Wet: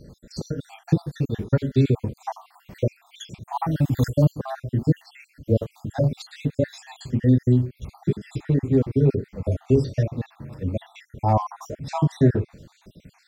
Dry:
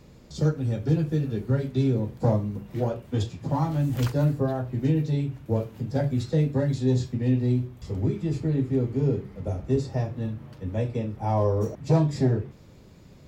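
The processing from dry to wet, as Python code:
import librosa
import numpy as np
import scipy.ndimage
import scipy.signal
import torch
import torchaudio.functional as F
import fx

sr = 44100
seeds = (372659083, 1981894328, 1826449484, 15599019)

y = fx.spec_dropout(x, sr, seeds[0], share_pct=60)
y = y * 10.0 ** (6.0 / 20.0)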